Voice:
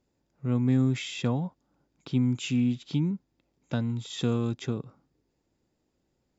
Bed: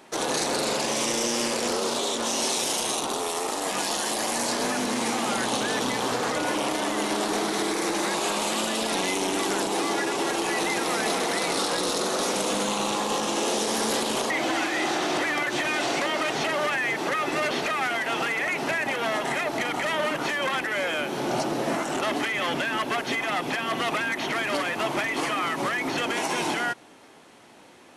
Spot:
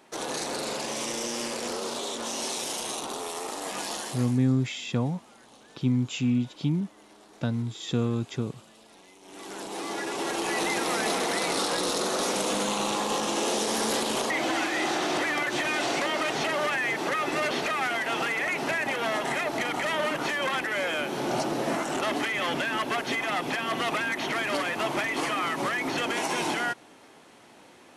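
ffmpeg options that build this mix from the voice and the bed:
-filter_complex "[0:a]adelay=3700,volume=0.5dB[a];[1:a]volume=20dB,afade=t=out:st=3.95:d=0.45:silence=0.0841395,afade=t=in:st=9.22:d=1.41:silence=0.0501187[b];[a][b]amix=inputs=2:normalize=0"

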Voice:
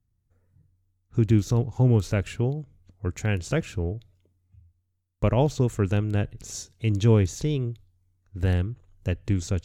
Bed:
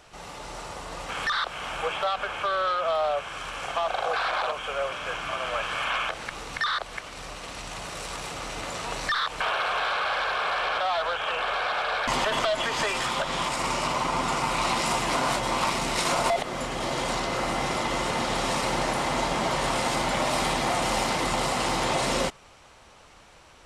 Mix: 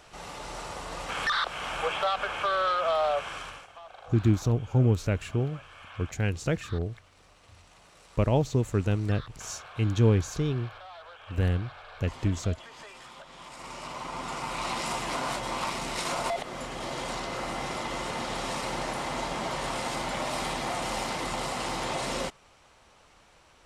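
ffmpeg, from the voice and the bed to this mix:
-filter_complex "[0:a]adelay=2950,volume=-2.5dB[a];[1:a]volume=13.5dB,afade=t=out:st=3.29:d=0.38:silence=0.105925,afade=t=in:st=13.37:d=1.42:silence=0.199526[b];[a][b]amix=inputs=2:normalize=0"

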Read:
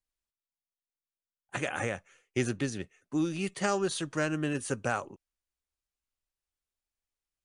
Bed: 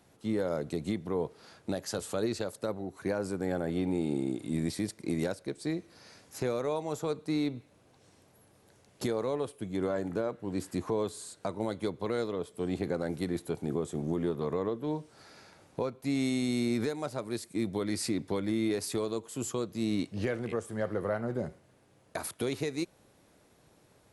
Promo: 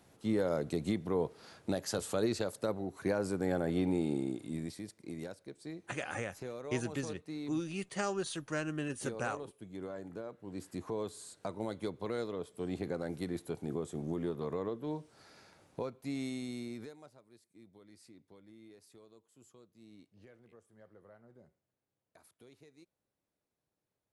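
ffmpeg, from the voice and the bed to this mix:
-filter_complex "[0:a]adelay=4350,volume=-6dB[a];[1:a]volume=6dB,afade=t=out:st=3.87:d=0.92:silence=0.281838,afade=t=in:st=10.27:d=1.05:silence=0.473151,afade=t=out:st=15.68:d=1.53:silence=0.0841395[b];[a][b]amix=inputs=2:normalize=0"

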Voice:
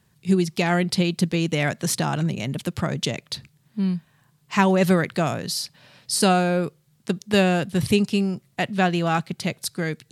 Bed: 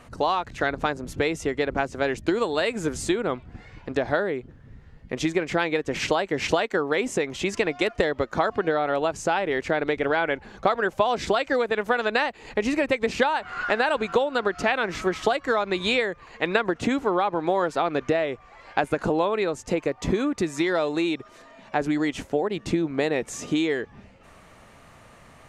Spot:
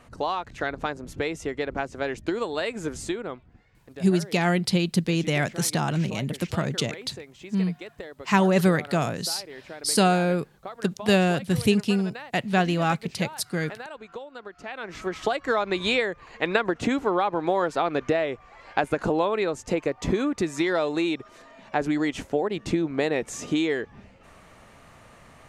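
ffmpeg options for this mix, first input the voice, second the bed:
-filter_complex "[0:a]adelay=3750,volume=-1.5dB[a];[1:a]volume=12dB,afade=t=out:st=2.96:d=0.69:silence=0.237137,afade=t=in:st=14.63:d=0.93:silence=0.158489[b];[a][b]amix=inputs=2:normalize=0"

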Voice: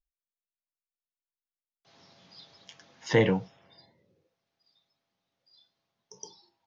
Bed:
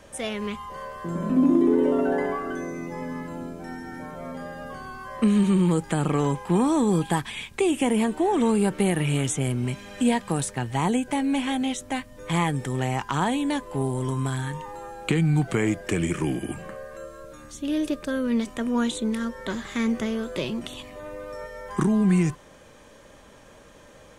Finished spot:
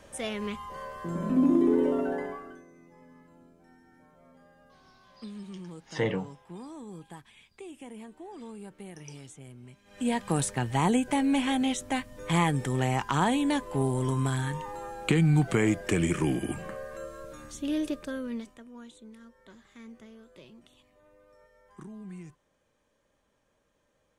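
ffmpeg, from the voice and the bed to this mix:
-filter_complex "[0:a]adelay=2850,volume=-6dB[a];[1:a]volume=17.5dB,afade=t=out:st=1.78:d=0.86:silence=0.11885,afade=t=in:st=9.84:d=0.52:silence=0.0891251,afade=t=out:st=17.38:d=1.26:silence=0.0794328[b];[a][b]amix=inputs=2:normalize=0"

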